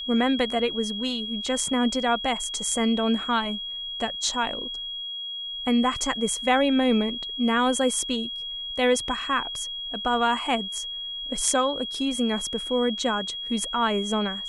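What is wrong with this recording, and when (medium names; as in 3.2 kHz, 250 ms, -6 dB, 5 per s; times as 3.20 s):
whine 3.3 kHz -31 dBFS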